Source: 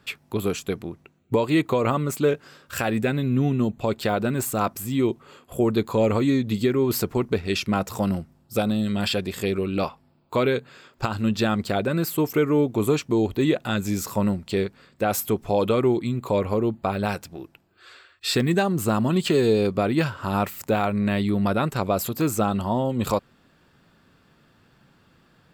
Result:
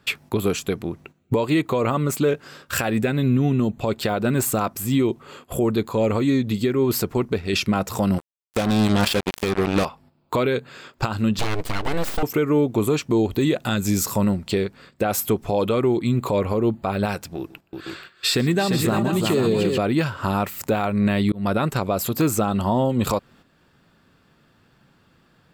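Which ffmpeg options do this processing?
ffmpeg -i in.wav -filter_complex "[0:a]asettb=1/sr,asplit=3[link_01][link_02][link_03];[link_01]atrim=end=8.184[link_04];[link_02]atrim=start=8.18:end=9.85,asetpts=PTS-STARTPTS,afade=type=in:duration=0.004:curve=qsin,afade=type=out:start_time=1.666:duration=0.004:curve=qsin,acrusher=bits=3:mix=0:aa=0.5[link_05];[link_03]atrim=start=9.846[link_06];[link_04][link_05]acrossfade=duration=0.004:curve1=hsin:curve2=qsin[link_07];[link_07][link_06]acrossfade=duration=0.004:curve1=qsin:curve2=hsin,asettb=1/sr,asplit=3[link_08][link_09][link_10];[link_08]atrim=end=11.394[link_11];[link_09]atrim=start=11.39:end=12.23,asetpts=PTS-STARTPTS,afade=type=in:duration=0.004:curve=qsin,afade=type=out:start_time=0.836:duration=0.004:curve=qsin,aeval=exprs='abs(val(0))':channel_layout=same[link_12];[link_10]atrim=start=12.226[link_13];[link_11][link_12]acrossfade=duration=0.004:curve1=hsin:curve2=qsin[link_14];[link_14][link_13]acrossfade=duration=0.004:curve1=qsin:curve2=hsin,asettb=1/sr,asplit=3[link_15][link_16][link_17];[link_15]atrim=end=13.324[link_18];[link_16]atrim=start=13.32:end=14.25,asetpts=PTS-STARTPTS,afade=type=in:duration=0.004:curve=qsin,afade=type=out:start_time=0.926:duration=0.004:curve=qsin,bass=frequency=250:gain=2,treble=frequency=4000:gain=5[link_19];[link_17]atrim=start=14.246[link_20];[link_18][link_19]acrossfade=duration=0.004:curve1=hsin:curve2=qsin[link_21];[link_21][link_20]acrossfade=duration=0.004:curve1=qsin:curve2=hsin,asettb=1/sr,asplit=3[link_22][link_23][link_24];[link_22]atrim=end=17.384[link_25];[link_23]atrim=start=17.38:end=19.78,asetpts=PTS-STARTPTS,afade=type=in:duration=0.004:curve=qsin,afade=type=out:start_time=2.396:duration=0.004:curve=qsin,aecho=1:1:122|348|482|503:0.1|0.531|0.447|0.126,atrim=end_sample=105840[link_26];[link_24]atrim=start=19.776[link_27];[link_25][link_26]acrossfade=duration=0.004:curve1=hsin:curve2=qsin[link_28];[link_28][link_27]acrossfade=duration=0.004:curve1=qsin:curve2=hsin,asplit=4[link_29][link_30][link_31][link_32];[link_29]atrim=end=5.892[link_33];[link_30]atrim=start=5.888:end=7.532,asetpts=PTS-STARTPTS,volume=-4dB[link_34];[link_31]atrim=start=7.528:end=21.32,asetpts=PTS-STARTPTS,afade=type=out:start_time=13.788:duration=0.004:curve=hsin[link_35];[link_32]atrim=start=21.32,asetpts=PTS-STARTPTS,afade=type=in:duration=0.42:curve=qsin[link_36];[link_33][link_34]acrossfade=duration=0.004:curve1=hsin:curve2=hsin[link_37];[link_35][link_36]concat=n=2:v=0:a=1[link_38];[link_37][link_38]acrossfade=duration=0.004:curve1=hsin:curve2=hsin,agate=range=-9dB:threshold=-51dB:ratio=16:detection=peak,alimiter=limit=-20.5dB:level=0:latency=1:release=461,volume=9dB" out.wav

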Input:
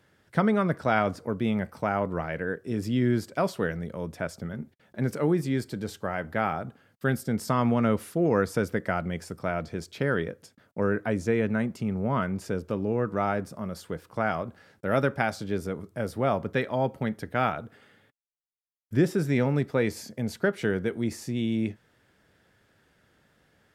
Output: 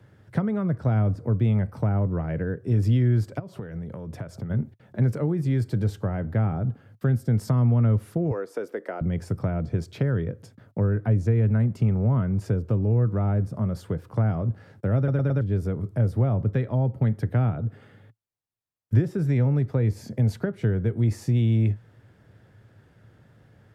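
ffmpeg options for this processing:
ffmpeg -i in.wav -filter_complex "[0:a]asplit=3[link_01][link_02][link_03];[link_01]afade=type=out:start_time=3.38:duration=0.02[link_04];[link_02]acompressor=threshold=-39dB:ratio=16:attack=3.2:release=140:knee=1:detection=peak,afade=type=in:start_time=3.38:duration=0.02,afade=type=out:start_time=4.49:duration=0.02[link_05];[link_03]afade=type=in:start_time=4.49:duration=0.02[link_06];[link_04][link_05][link_06]amix=inputs=3:normalize=0,asettb=1/sr,asplit=3[link_07][link_08][link_09];[link_07]atrim=end=8.314[link_10];[link_08]atrim=start=8.31:end=9.01,asetpts=PTS-STARTPTS,afade=type=in:duration=0.004:curve=qsin,afade=type=out:start_time=0.696:duration=0.004:curve=qsin,highpass=frequency=370:width=0.5412,highpass=frequency=370:width=1.3066[link_11];[link_09]atrim=start=9.006[link_12];[link_10][link_11]acrossfade=duration=0.004:curve1=hsin:curve2=qsin[link_13];[link_13][link_12]acrossfade=duration=0.004:curve1=qsin:curve2=hsin,asplit=5[link_14][link_15][link_16][link_17][link_18];[link_14]atrim=end=15.082[link_19];[link_15]atrim=start=14.968:end=15.082[link_20];[link_16]atrim=start=14.968:end=15.082[link_21];[link_17]atrim=start=14.968:end=15.082[link_22];[link_18]atrim=start=15.408[link_23];[link_19][link_20]acrossfade=duration=0.004:curve1=hsin:curve2=hsin[link_24];[link_24][link_21]acrossfade=duration=0.004:curve1=hsin:curve2=hsin[link_25];[link_25][link_22]acrossfade=duration=0.004:curve1=hsin:curve2=hsin[link_26];[link_26][link_23]acrossfade=duration=0.004:curve1=hsin:curve2=hsin,tiltshelf=frequency=1500:gain=5,acrossover=split=130|450[link_27][link_28][link_29];[link_27]acompressor=threshold=-36dB:ratio=4[link_30];[link_28]acompressor=threshold=-33dB:ratio=4[link_31];[link_29]acompressor=threshold=-39dB:ratio=4[link_32];[link_30][link_31][link_32]amix=inputs=3:normalize=0,equalizer=frequency=110:width=2.1:gain=14,volume=2dB" out.wav

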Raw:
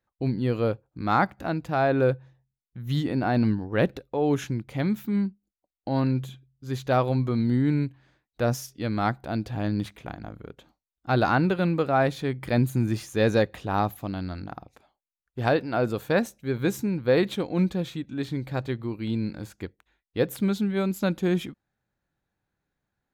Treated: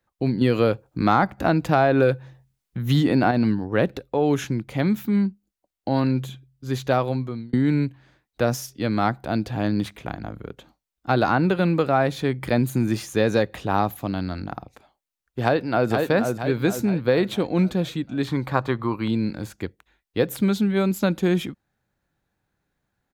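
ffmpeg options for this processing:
ffmpeg -i in.wav -filter_complex "[0:a]asettb=1/sr,asplit=3[link_01][link_02][link_03];[link_01]atrim=end=0.414[link_04];[link_02]atrim=start=0.41:end=3.31,asetpts=PTS-STARTPTS,afade=type=in:duration=0.004:curve=qsin,afade=type=out:start_time=2.896:duration=0.004:curve=qsin,acontrast=66[link_05];[link_03]atrim=start=3.306[link_06];[link_04][link_05]acrossfade=duration=0.004:curve1=hsin:curve2=qsin[link_07];[link_07][link_06]acrossfade=duration=0.004:curve1=qsin:curve2=hsin,asplit=2[link_08][link_09];[link_09]afade=type=in:start_time=15.43:duration=0.01,afade=type=out:start_time=15.9:duration=0.01,aecho=0:1:470|940|1410|1880|2350:0.530884|0.238898|0.107504|0.0483768|0.0217696[link_10];[link_08][link_10]amix=inputs=2:normalize=0,asettb=1/sr,asplit=3[link_11][link_12][link_13];[link_11]atrim=end=18.274[link_14];[link_12]atrim=start=18.27:end=19.08,asetpts=PTS-STARTPTS,afade=type=in:duration=0.004:curve=qsin,afade=type=out:start_time=0.806:duration=0.004:curve=qsin,equalizer=frequency=1100:width_type=o:width=0.89:gain=14.5[link_15];[link_13]atrim=start=19.076[link_16];[link_14][link_15]acrossfade=duration=0.004:curve1=hsin:curve2=qsin[link_17];[link_17][link_16]acrossfade=duration=0.004:curve1=qsin:curve2=hsin,asplit=2[link_18][link_19];[link_18]atrim=end=7.53,asetpts=PTS-STARTPTS,afade=type=out:start_time=6.86:duration=0.67[link_20];[link_19]atrim=start=7.53,asetpts=PTS-STARTPTS,afade=type=in:duration=0.004:curve=hsin[link_21];[link_20][link_21]concat=n=2:v=0:a=1,acrossover=split=140|1400[link_22][link_23][link_24];[link_22]acompressor=threshold=-39dB:ratio=4[link_25];[link_23]acompressor=threshold=-22dB:ratio=4[link_26];[link_24]acompressor=threshold=-35dB:ratio=4[link_27];[link_25][link_26][link_27]amix=inputs=3:normalize=0,volume=5.5dB" out.wav

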